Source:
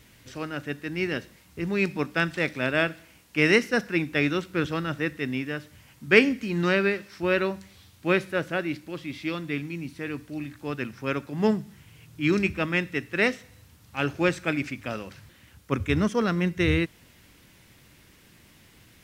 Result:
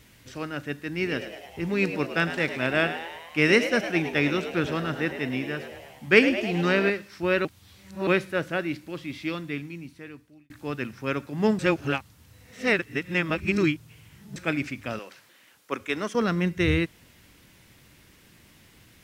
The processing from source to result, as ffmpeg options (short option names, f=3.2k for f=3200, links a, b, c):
-filter_complex "[0:a]asettb=1/sr,asplit=3[a][b][c];[a]atrim=end=0.914[d];[b]atrim=start=0.91:end=6.9,asetpts=PTS-STARTPTS,afade=t=in:d=0.004:c=qsin,afade=t=out:st=5.986:d=0.004:c=qsin,asplit=9[e][f][g][h][i][j][k][l][m];[f]adelay=105,afreqshift=85,volume=-11dB[n];[g]adelay=210,afreqshift=170,volume=-14.9dB[o];[h]adelay=315,afreqshift=255,volume=-18.8dB[p];[i]adelay=420,afreqshift=340,volume=-22.6dB[q];[j]adelay=525,afreqshift=425,volume=-26.5dB[r];[k]adelay=630,afreqshift=510,volume=-30.4dB[s];[l]adelay=735,afreqshift=595,volume=-34.3dB[t];[m]adelay=840,afreqshift=680,volume=-38.1dB[u];[e][n][o][p][q][r][s][t][u]amix=inputs=9:normalize=0,atrim=end_sample=264159[v];[c]atrim=start=6.896[w];[d][v]acrossfade=d=0.004:c1=hsin:c2=qsin[x];[x][w]acrossfade=d=0.004:c1=qsin:c2=hsin,asettb=1/sr,asplit=3[y][z][aa];[y]atrim=end=14.994[ab];[z]atrim=start=14.99:end=16.15,asetpts=PTS-STARTPTS,afade=t=in:d=0.004:c=qsin,afade=t=out:st=1.156:d=0.004:c=qsin,highpass=400[ac];[aa]atrim=start=16.146[ad];[ab][ac]acrossfade=d=0.004:c1=hsin:c2=qsin[ae];[ae][ad]acrossfade=d=0.004:c1=qsin:c2=hsin,asplit=6[af][ag][ah][ai][aj][ak];[af]atrim=end=7.452[al];[ag]atrim=start=7.448:end=8.072,asetpts=PTS-STARTPTS,areverse[am];[ah]atrim=start=8.068:end=10.5,asetpts=PTS-STARTPTS,afade=t=out:st=1.192:d=1.24[an];[ai]atrim=start=10.5:end=11.592,asetpts=PTS-STARTPTS,afade=t=in:d=0.004:c=hsin[ao];[aj]atrim=start=11.588:end=14.362,asetpts=PTS-STARTPTS,areverse[ap];[ak]atrim=start=14.358[aq];[al][am]acrossfade=d=0.004:c1=hsin:c2=hsin[ar];[an][ao]concat=n=2:v=0:a=1[as];[ar][as]acrossfade=d=0.004:c1=hsin:c2=hsin[at];[at][ap]acrossfade=d=0.004:c1=hsin:c2=hsin[au];[au][aq]acrossfade=d=0.004:c1=hsin:c2=hsin"